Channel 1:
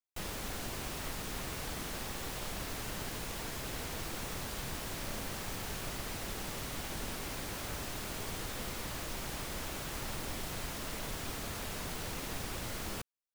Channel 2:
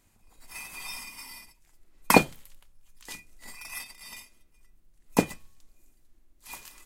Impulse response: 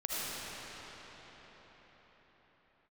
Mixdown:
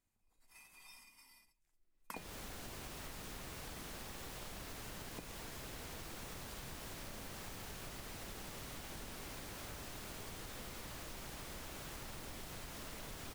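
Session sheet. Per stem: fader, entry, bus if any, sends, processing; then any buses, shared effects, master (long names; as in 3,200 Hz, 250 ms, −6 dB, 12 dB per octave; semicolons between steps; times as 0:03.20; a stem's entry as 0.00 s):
−1.0 dB, 2.00 s, no send, no processing
−19.5 dB, 0.00 s, no send, no processing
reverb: not used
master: downward compressor 6 to 1, threshold −45 dBFS, peak gain reduction 14.5 dB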